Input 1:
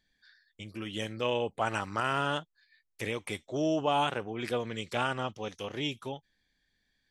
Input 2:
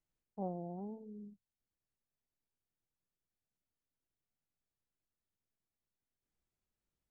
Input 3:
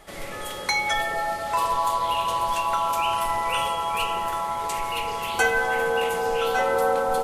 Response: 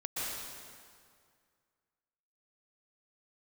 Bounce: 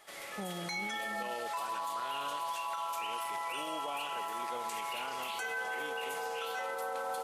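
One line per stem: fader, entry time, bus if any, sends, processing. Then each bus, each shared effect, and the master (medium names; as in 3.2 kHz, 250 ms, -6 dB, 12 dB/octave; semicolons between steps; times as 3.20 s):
-9.0 dB, 0.00 s, no send, high-pass 300 Hz 12 dB/octave
+2.5 dB, 0.00 s, no send, none
-5.5 dB, 0.00 s, no send, high-pass 1 kHz 6 dB/octave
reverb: none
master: peak limiter -29 dBFS, peak gain reduction 11.5 dB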